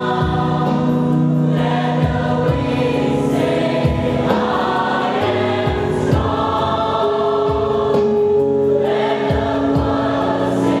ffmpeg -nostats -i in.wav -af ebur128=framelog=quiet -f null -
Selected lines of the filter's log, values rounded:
Integrated loudness:
  I:         -16.9 LUFS
  Threshold: -26.9 LUFS
Loudness range:
  LRA:         0.9 LU
  Threshold: -36.9 LUFS
  LRA low:   -17.3 LUFS
  LRA high:  -16.4 LUFS